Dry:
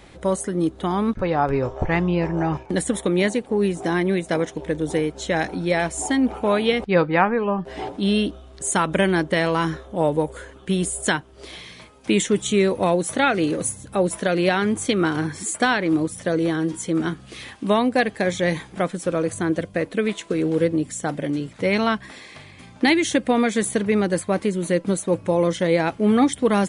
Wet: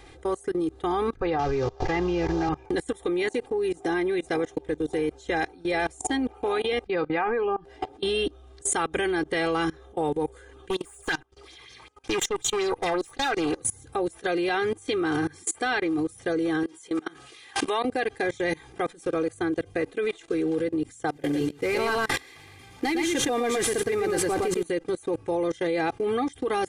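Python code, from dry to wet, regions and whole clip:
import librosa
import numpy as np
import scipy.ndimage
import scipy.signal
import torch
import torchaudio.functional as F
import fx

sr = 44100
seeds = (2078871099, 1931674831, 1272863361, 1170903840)

y = fx.chain(x, sr, fx.cvsd(bps=32000),
    fx.band_squash(depth_pct=100), at=(1.39, 2.49))
y = fx.chain(y, sr, fx.tube_stage(drive_db=20.0, bias=0.65),
    fx.bell_lfo(hz=5.4, low_hz=900.0, high_hz=6800.0, db=12), at=(10.7, 13.6))
y = fx.chain(y, sr, fx.highpass(hz=640.0, slope=6),
    fx.pre_swell(db_per_s=44.0), at=(16.63, 17.85))
y = fx.chain(y, sr, fx.cvsd(bps=64000),
    fx.echo_single(ms=114, db=-4.5),
    fx.sustainer(db_per_s=30.0), at=(21.12, 24.63))
y = y + 0.85 * np.pad(y, (int(2.5 * sr / 1000.0), 0))[:len(y)]
y = fx.level_steps(y, sr, step_db=24)
y = y * librosa.db_to_amplitude(-1.0)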